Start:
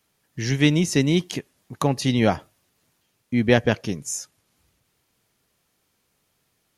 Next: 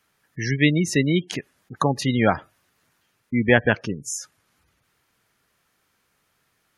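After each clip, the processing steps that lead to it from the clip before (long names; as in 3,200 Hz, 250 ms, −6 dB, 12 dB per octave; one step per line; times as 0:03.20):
gate on every frequency bin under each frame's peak −25 dB strong
parametric band 1,500 Hz +8.5 dB 1.3 octaves
level −1 dB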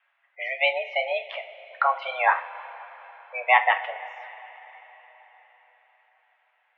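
single-sideband voice off tune +260 Hz 410–2,700 Hz
coupled-rooms reverb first 0.31 s, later 4.6 s, from −19 dB, DRR 5 dB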